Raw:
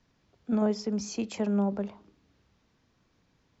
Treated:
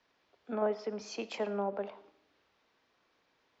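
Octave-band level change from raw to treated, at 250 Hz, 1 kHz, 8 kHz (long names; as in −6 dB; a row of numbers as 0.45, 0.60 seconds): −13.5 dB, +1.0 dB, can't be measured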